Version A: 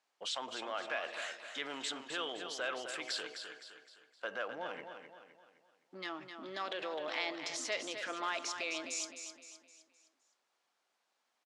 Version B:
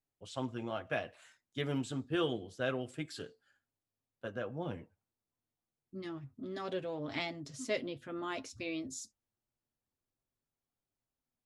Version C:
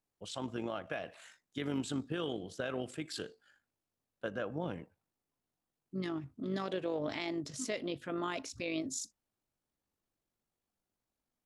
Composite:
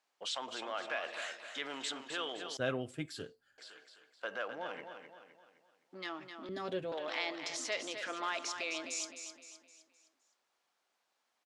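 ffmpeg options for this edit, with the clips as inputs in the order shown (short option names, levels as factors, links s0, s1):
-filter_complex "[1:a]asplit=2[s0][s1];[0:a]asplit=3[s2][s3][s4];[s2]atrim=end=2.572[s5];[s0]atrim=start=2.568:end=3.582[s6];[s3]atrim=start=3.578:end=6.492[s7];[s1]atrim=start=6.488:end=6.922[s8];[s4]atrim=start=6.918[s9];[s5][s6]acrossfade=d=0.004:c1=hsin:c2=hsin[s10];[s10][s7]acrossfade=d=0.004:c1=hsin:c2=hsin[s11];[s11][s8]acrossfade=d=0.004:c1=hsin:c2=hsin[s12];[s12][s9]acrossfade=d=0.004:c1=hsin:c2=hsin"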